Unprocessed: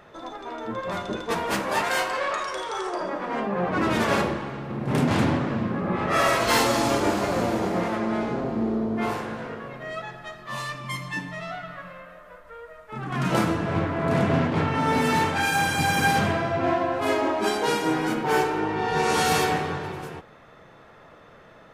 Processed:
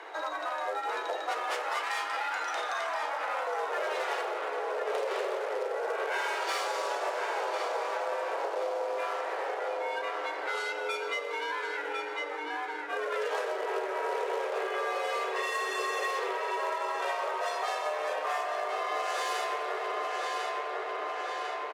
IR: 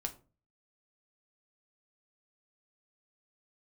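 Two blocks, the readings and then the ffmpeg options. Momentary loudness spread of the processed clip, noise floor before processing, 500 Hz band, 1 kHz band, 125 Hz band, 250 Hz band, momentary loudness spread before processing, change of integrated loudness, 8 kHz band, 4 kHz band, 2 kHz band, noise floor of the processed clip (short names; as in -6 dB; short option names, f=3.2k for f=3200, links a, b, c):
3 LU, -50 dBFS, -5.5 dB, -5.0 dB, under -40 dB, -23.5 dB, 14 LU, -7.5 dB, -10.5 dB, -7.0 dB, -5.5 dB, -36 dBFS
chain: -filter_complex "[0:a]acrusher=bits=4:mode=log:mix=0:aa=0.000001,adynamicsmooth=sensitivity=3:basefreq=7k,asplit=2[a][b];[b]adelay=1049,lowpass=f=4.6k:p=1,volume=-8dB,asplit=2[c][d];[d]adelay=1049,lowpass=f=4.6k:p=1,volume=0.35,asplit=2[e][f];[f]adelay=1049,lowpass=f=4.6k:p=1,volume=0.35,asplit=2[g][h];[h]adelay=1049,lowpass=f=4.6k:p=1,volume=0.35[i];[a][c][e][g][i]amix=inputs=5:normalize=0,afreqshift=290,acompressor=threshold=-36dB:ratio=6,volume=5.5dB"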